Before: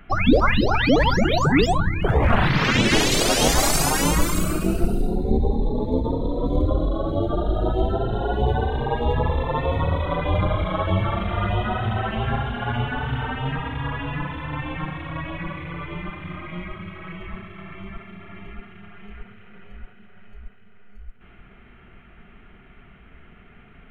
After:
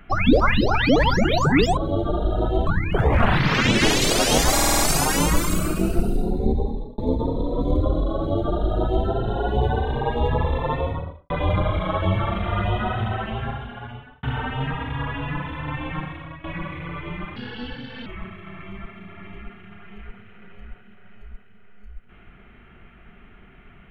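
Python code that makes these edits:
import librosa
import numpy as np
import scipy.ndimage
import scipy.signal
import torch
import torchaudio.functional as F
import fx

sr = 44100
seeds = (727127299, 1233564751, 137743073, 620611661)

y = fx.studio_fade_out(x, sr, start_s=9.51, length_s=0.64)
y = fx.edit(y, sr, fx.stutter(start_s=3.64, slice_s=0.05, count=6),
    fx.fade_out_span(start_s=5.16, length_s=0.67, curve='qsin'),
    fx.duplicate(start_s=7.01, length_s=0.9, to_s=1.77),
    fx.fade_out_span(start_s=11.77, length_s=1.31),
    fx.fade_out_to(start_s=14.85, length_s=0.44, floor_db=-14.5),
    fx.speed_span(start_s=16.21, length_s=0.97, speed=1.38), tone=tone)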